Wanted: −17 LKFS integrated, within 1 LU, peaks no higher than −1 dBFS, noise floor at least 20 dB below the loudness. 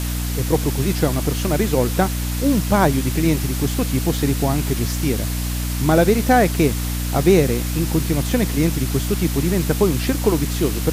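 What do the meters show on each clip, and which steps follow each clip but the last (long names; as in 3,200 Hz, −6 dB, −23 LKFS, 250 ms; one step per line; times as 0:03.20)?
mains hum 60 Hz; hum harmonics up to 300 Hz; level of the hum −21 dBFS; background noise floor −23 dBFS; target noise floor −40 dBFS; integrated loudness −19.5 LKFS; sample peak −3.5 dBFS; target loudness −17.0 LKFS
→ mains-hum notches 60/120/180/240/300 Hz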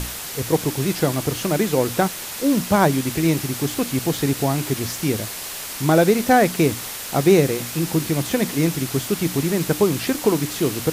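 mains hum none found; background noise floor −32 dBFS; target noise floor −41 dBFS
→ broadband denoise 9 dB, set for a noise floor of −32 dBFS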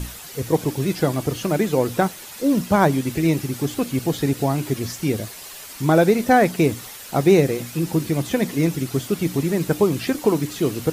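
background noise floor −38 dBFS; target noise floor −41 dBFS
→ broadband denoise 6 dB, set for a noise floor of −38 dBFS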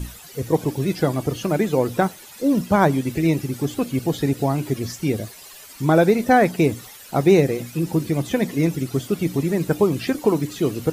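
background noise floor −43 dBFS; integrated loudness −21.0 LKFS; sample peak −3.5 dBFS; target loudness −17.0 LKFS
→ level +4 dB
brickwall limiter −1 dBFS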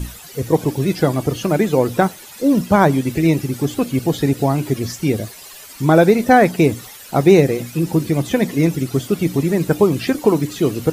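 integrated loudness −17.0 LKFS; sample peak −1.0 dBFS; background noise floor −39 dBFS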